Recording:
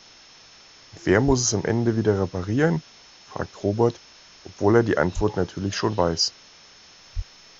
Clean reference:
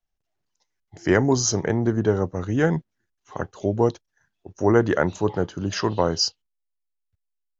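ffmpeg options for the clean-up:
-filter_complex "[0:a]bandreject=f=5.3k:w=30,asplit=3[a][b][c];[a]afade=t=out:st=1.26:d=0.02[d];[b]highpass=f=140:w=0.5412,highpass=f=140:w=1.3066,afade=t=in:st=1.26:d=0.02,afade=t=out:st=1.38:d=0.02[e];[c]afade=t=in:st=1.38:d=0.02[f];[d][e][f]amix=inputs=3:normalize=0,asplit=3[g][h][i];[g]afade=t=out:st=5.15:d=0.02[j];[h]highpass=f=140:w=0.5412,highpass=f=140:w=1.3066,afade=t=in:st=5.15:d=0.02,afade=t=out:st=5.27:d=0.02[k];[i]afade=t=in:st=5.27:d=0.02[l];[j][k][l]amix=inputs=3:normalize=0,asplit=3[m][n][o];[m]afade=t=out:st=7.15:d=0.02[p];[n]highpass=f=140:w=0.5412,highpass=f=140:w=1.3066,afade=t=in:st=7.15:d=0.02,afade=t=out:st=7.27:d=0.02[q];[o]afade=t=in:st=7.27:d=0.02[r];[p][q][r]amix=inputs=3:normalize=0,afwtdn=0.005,asetnsamples=n=441:p=0,asendcmd='6.97 volume volume -12dB',volume=0dB"

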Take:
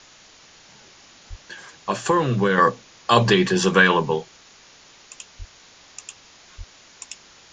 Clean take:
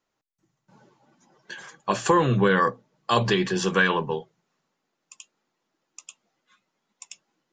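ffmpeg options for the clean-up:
-filter_complex "[0:a]asplit=3[a][b][c];[a]afade=t=out:st=1.29:d=0.02[d];[b]highpass=f=140:w=0.5412,highpass=f=140:w=1.3066,afade=t=in:st=1.29:d=0.02,afade=t=out:st=1.41:d=0.02[e];[c]afade=t=in:st=1.41:d=0.02[f];[d][e][f]amix=inputs=3:normalize=0,asplit=3[g][h][i];[g]afade=t=out:st=5.38:d=0.02[j];[h]highpass=f=140:w=0.5412,highpass=f=140:w=1.3066,afade=t=in:st=5.38:d=0.02,afade=t=out:st=5.5:d=0.02[k];[i]afade=t=in:st=5.5:d=0.02[l];[j][k][l]amix=inputs=3:normalize=0,asplit=3[m][n][o];[m]afade=t=out:st=6.57:d=0.02[p];[n]highpass=f=140:w=0.5412,highpass=f=140:w=1.3066,afade=t=in:st=6.57:d=0.02,afade=t=out:st=6.69:d=0.02[q];[o]afade=t=in:st=6.69:d=0.02[r];[p][q][r]amix=inputs=3:normalize=0,afwtdn=0.0056,asetnsamples=n=441:p=0,asendcmd='2.58 volume volume -5.5dB',volume=0dB"

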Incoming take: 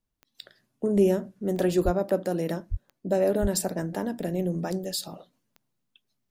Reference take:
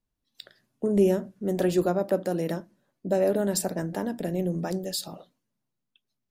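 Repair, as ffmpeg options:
-filter_complex "[0:a]adeclick=t=4,asplit=3[a][b][c];[a]afade=t=out:st=1.84:d=0.02[d];[b]highpass=f=140:w=0.5412,highpass=f=140:w=1.3066,afade=t=in:st=1.84:d=0.02,afade=t=out:st=1.96:d=0.02[e];[c]afade=t=in:st=1.96:d=0.02[f];[d][e][f]amix=inputs=3:normalize=0,asplit=3[g][h][i];[g]afade=t=out:st=2.7:d=0.02[j];[h]highpass=f=140:w=0.5412,highpass=f=140:w=1.3066,afade=t=in:st=2.7:d=0.02,afade=t=out:st=2.82:d=0.02[k];[i]afade=t=in:st=2.82:d=0.02[l];[j][k][l]amix=inputs=3:normalize=0,asplit=3[m][n][o];[m]afade=t=out:st=3.41:d=0.02[p];[n]highpass=f=140:w=0.5412,highpass=f=140:w=1.3066,afade=t=in:st=3.41:d=0.02,afade=t=out:st=3.53:d=0.02[q];[o]afade=t=in:st=3.53:d=0.02[r];[p][q][r]amix=inputs=3:normalize=0,asetnsamples=n=441:p=0,asendcmd='5.33 volume volume -4.5dB',volume=0dB"

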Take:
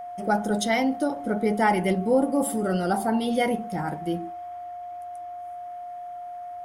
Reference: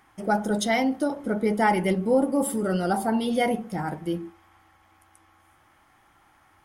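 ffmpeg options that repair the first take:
-af "bandreject=f=710:w=30"

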